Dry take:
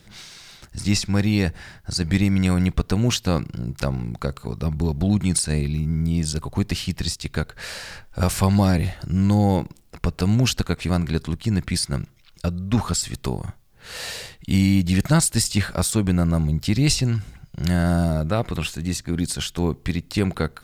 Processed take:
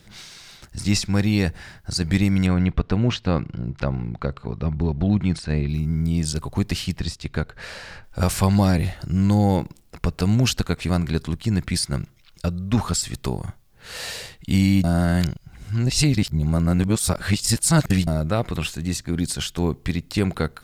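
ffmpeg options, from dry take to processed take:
-filter_complex "[0:a]asettb=1/sr,asplit=3[a][b][c];[a]atrim=end=2.464[d];[b]atrim=start=2.46:end=5.69,asetpts=PTS-STARTPTS,afade=t=in:d=0.004:c=qsin,afade=t=out:st=3.226:d=0.004:c=qsin,lowpass=3.1k[e];[c]atrim=start=5.686[f];[d][e]acrossfade=d=0.004:c1=hsin:c2=qsin[g];[g][f]acrossfade=d=0.004:c1=qsin:c2=hsin,asettb=1/sr,asplit=3[h][i][j];[h]atrim=end=6.974[k];[i]atrim=start=6.97:end=8.04,asetpts=PTS-STARTPTS,afade=t=in:d=0.004:c=qsin,afade=t=out:st=1.066:d=0.004:c=qsin,lowpass=f=2.8k:p=1[l];[j]atrim=start=8.036[m];[k][l]acrossfade=d=0.004:c1=hsin:c2=qsin[n];[n][m]acrossfade=d=0.004:c1=qsin:c2=hsin,asplit=3[o][p][q];[o]atrim=end=14.842[r];[p]atrim=start=14.838:end=18.072,asetpts=PTS-STARTPTS,areverse[s];[q]atrim=start=18.068[t];[r][s]acrossfade=d=0.004:c1=hsin:c2=hsin[u];[u][t]acrossfade=d=0.004:c1=hsin:c2=hsin"

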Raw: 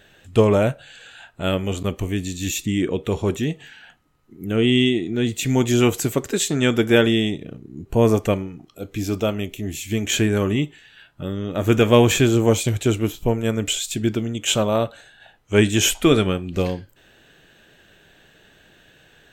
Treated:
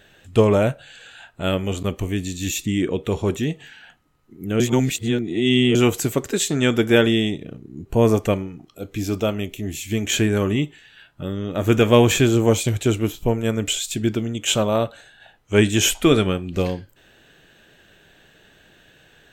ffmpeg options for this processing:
-filter_complex "[0:a]asplit=3[a][b][c];[a]atrim=end=4.602[d];[b]atrim=start=4.598:end=5.752,asetpts=PTS-STARTPTS,areverse[e];[c]atrim=start=5.748[f];[d][e]acrossfade=d=0.004:c1=hsin:c2=hsin[g];[g][f]acrossfade=d=0.004:c1=hsin:c2=hsin"

